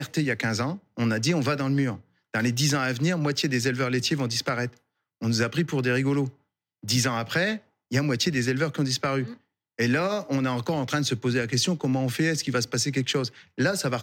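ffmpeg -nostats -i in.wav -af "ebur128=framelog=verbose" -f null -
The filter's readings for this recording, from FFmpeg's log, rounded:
Integrated loudness:
  I:         -25.8 LUFS
  Threshold: -36.0 LUFS
Loudness range:
  LRA:         1.4 LU
  Threshold: -46.0 LUFS
  LRA low:   -26.7 LUFS
  LRA high:  -25.4 LUFS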